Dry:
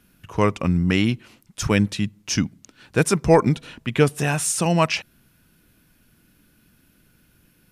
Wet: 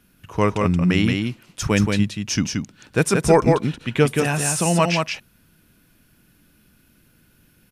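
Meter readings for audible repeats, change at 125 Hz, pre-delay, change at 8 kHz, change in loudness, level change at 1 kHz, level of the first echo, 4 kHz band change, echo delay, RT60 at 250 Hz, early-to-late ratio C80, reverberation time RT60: 1, +1.5 dB, no reverb audible, +1.5 dB, +1.5 dB, +1.5 dB, −4.0 dB, +1.5 dB, 177 ms, no reverb audible, no reverb audible, no reverb audible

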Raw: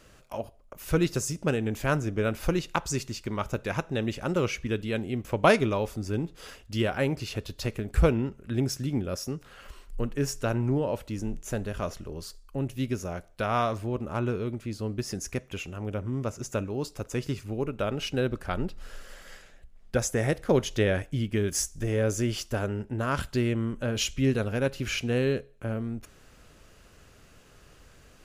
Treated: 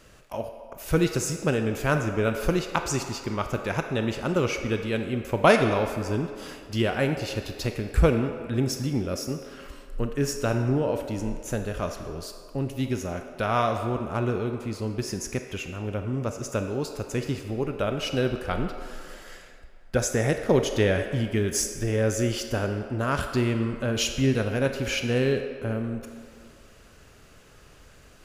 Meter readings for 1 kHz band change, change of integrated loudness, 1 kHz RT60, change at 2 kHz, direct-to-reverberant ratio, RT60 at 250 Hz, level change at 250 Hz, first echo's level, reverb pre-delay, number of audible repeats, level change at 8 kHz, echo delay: +3.0 dB, +2.5 dB, 2.2 s, +3.0 dB, 5.5 dB, 2.1 s, +2.5 dB, no echo audible, 25 ms, no echo audible, +2.5 dB, no echo audible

